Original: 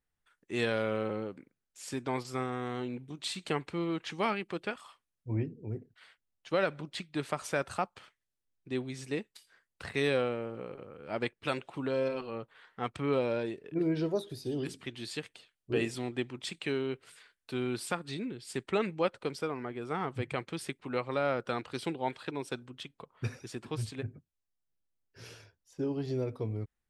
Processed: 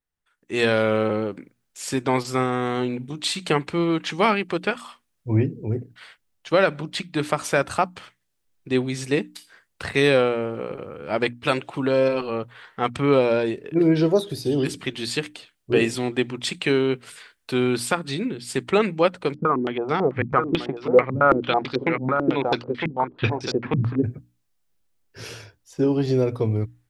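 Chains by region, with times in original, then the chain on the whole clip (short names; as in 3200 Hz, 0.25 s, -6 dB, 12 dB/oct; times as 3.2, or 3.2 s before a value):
19.34–24.04 air absorption 57 m + echo 0.957 s -7 dB + stepped low-pass 9.1 Hz 200–5000 Hz
whole clip: notches 60/120/180/240/300 Hz; AGC gain up to 15.5 dB; gain -2.5 dB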